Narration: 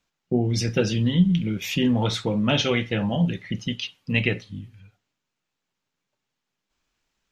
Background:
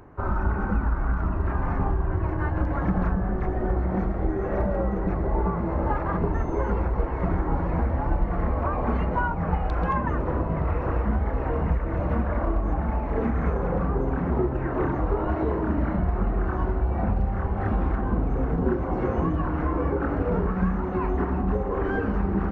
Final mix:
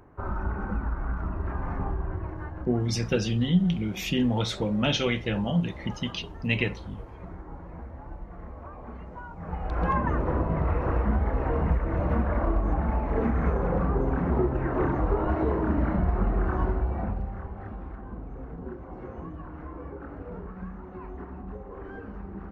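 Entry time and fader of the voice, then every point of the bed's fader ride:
2.35 s, -3.5 dB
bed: 2.04 s -5.5 dB
2.91 s -16.5 dB
9.25 s -16.5 dB
9.85 s -0.5 dB
16.66 s -0.5 dB
17.75 s -14.5 dB

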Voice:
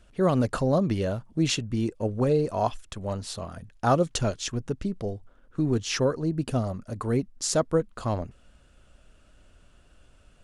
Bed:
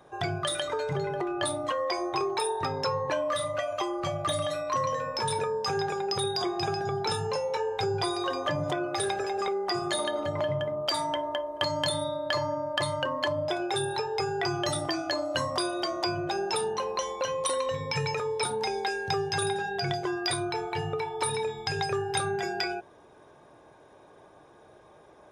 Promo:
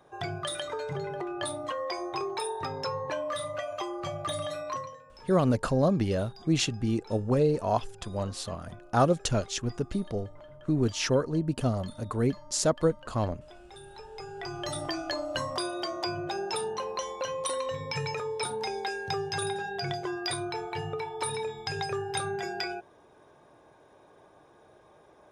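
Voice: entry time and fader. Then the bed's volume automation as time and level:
5.10 s, -1.0 dB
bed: 4.71 s -4 dB
5.03 s -21.5 dB
13.64 s -21.5 dB
14.85 s -3 dB

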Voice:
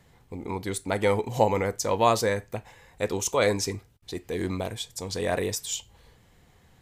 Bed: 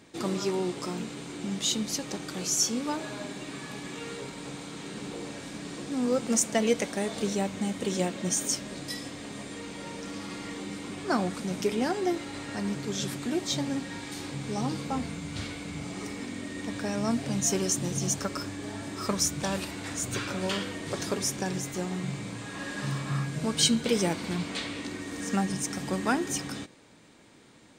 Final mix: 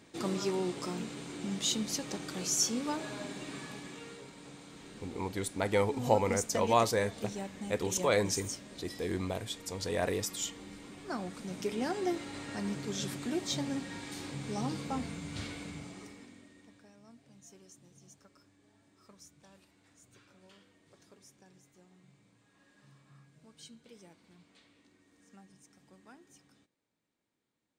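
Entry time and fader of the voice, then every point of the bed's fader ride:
4.70 s, -5.0 dB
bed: 3.58 s -3.5 dB
4.23 s -11 dB
11.17 s -11 dB
12.02 s -4.5 dB
15.63 s -4.5 dB
16.98 s -29.5 dB

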